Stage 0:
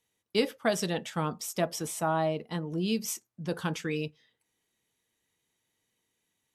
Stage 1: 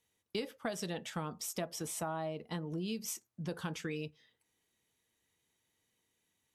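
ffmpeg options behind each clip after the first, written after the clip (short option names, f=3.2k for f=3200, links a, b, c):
-af "equalizer=f=78:t=o:w=0.38:g=6,acompressor=threshold=-35dB:ratio=4,volume=-1dB"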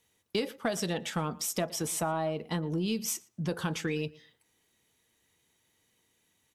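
-filter_complex "[0:a]asplit=2[a][b];[b]adelay=116,lowpass=f=3.7k:p=1,volume=-22dB,asplit=2[c][d];[d]adelay=116,lowpass=f=3.7k:p=1,volume=0.17[e];[a][c][e]amix=inputs=3:normalize=0,asplit=2[f][g];[g]asoftclip=type=tanh:threshold=-35dB,volume=-8.5dB[h];[f][h]amix=inputs=2:normalize=0,volume=5dB"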